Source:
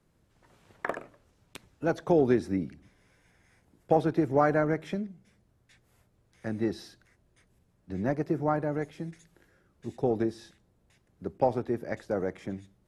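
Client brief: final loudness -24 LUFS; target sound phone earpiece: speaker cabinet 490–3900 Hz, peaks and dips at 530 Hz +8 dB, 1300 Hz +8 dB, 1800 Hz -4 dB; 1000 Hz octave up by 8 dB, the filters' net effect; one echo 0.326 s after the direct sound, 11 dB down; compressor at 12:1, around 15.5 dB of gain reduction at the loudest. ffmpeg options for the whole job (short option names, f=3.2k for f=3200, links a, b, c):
-af "equalizer=f=1k:t=o:g=9,acompressor=threshold=-30dB:ratio=12,highpass=490,equalizer=f=530:t=q:w=4:g=8,equalizer=f=1.3k:t=q:w=4:g=8,equalizer=f=1.8k:t=q:w=4:g=-4,lowpass=f=3.9k:w=0.5412,lowpass=f=3.9k:w=1.3066,aecho=1:1:326:0.282,volume=14dB"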